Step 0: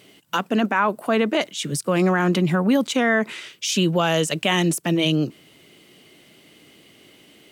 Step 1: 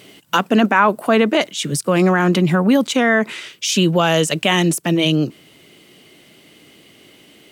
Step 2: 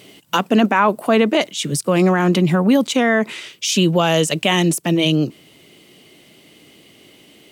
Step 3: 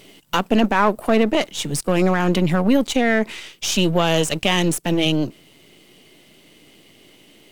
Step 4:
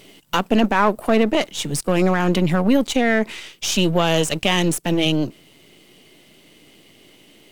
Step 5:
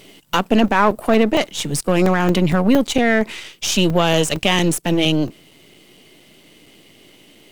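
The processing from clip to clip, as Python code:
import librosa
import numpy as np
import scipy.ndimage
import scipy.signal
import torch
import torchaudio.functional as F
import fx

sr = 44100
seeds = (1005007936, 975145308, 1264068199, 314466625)

y1 = fx.rider(x, sr, range_db=4, speed_s=2.0)
y1 = y1 * 10.0 ** (4.5 / 20.0)
y2 = fx.peak_eq(y1, sr, hz=1500.0, db=-4.0, octaves=0.66)
y3 = np.where(y2 < 0.0, 10.0 ** (-7.0 / 20.0) * y2, y2)
y4 = y3
y5 = fx.buffer_crackle(y4, sr, first_s=0.45, period_s=0.23, block=128, kind='zero')
y5 = y5 * 10.0 ** (2.0 / 20.0)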